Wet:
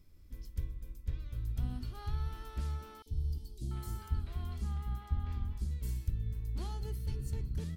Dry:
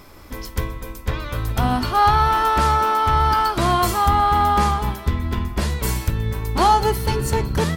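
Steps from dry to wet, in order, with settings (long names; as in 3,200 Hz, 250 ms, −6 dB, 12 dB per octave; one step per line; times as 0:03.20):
guitar amp tone stack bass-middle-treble 10-0-1
0:03.02–0:05.71: three-band delay without the direct sound highs, lows, mids 40/690 ms, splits 470/3,900 Hz
level −4 dB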